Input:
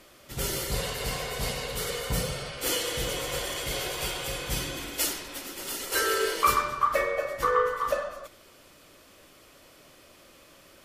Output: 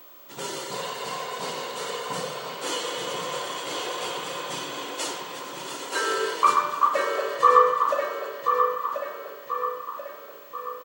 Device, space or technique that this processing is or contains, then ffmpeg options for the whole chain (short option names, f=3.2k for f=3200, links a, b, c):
old television with a line whistle: -filter_complex "[0:a]highpass=f=190:w=0.5412,highpass=f=190:w=1.3066,equalizer=f=220:t=q:w=4:g=-5,equalizer=f=990:t=q:w=4:g=10,equalizer=f=2.2k:t=q:w=4:g=-4,equalizer=f=5.2k:t=q:w=4:g=-5,lowpass=f=8.1k:w=0.5412,lowpass=f=8.1k:w=1.3066,aeval=exprs='val(0)+0.00501*sin(2*PI*15734*n/s)':c=same,asettb=1/sr,asplit=3[a][b][c];[a]atrim=end=7.354[d];[b]atrim=start=7.35:end=7.83,asetpts=PTS-STARTPTS,afade=t=in:d=0.004:c=qsin,afade=t=out:st=0.476:d=0.004:c=qsin,aecho=1:1:1.7:0.91,atrim=end_sample=21168[e];[c]atrim=start=7.826[f];[d][e]acrossfade=d=0.004:c1=hsin:c2=qsin[g];[g][f]acrossfade=d=0.004:c1=qsin:c2=hsin,asplit=2[h][i];[i]adelay=1035,lowpass=f=4.7k:p=1,volume=-5.5dB,asplit=2[j][k];[k]adelay=1035,lowpass=f=4.7k:p=1,volume=0.49,asplit=2[l][m];[m]adelay=1035,lowpass=f=4.7k:p=1,volume=0.49,asplit=2[n][o];[o]adelay=1035,lowpass=f=4.7k:p=1,volume=0.49,asplit=2[p][q];[q]adelay=1035,lowpass=f=4.7k:p=1,volume=0.49,asplit=2[r][s];[s]adelay=1035,lowpass=f=4.7k:p=1,volume=0.49[t];[h][j][l][n][p][r][t]amix=inputs=7:normalize=0"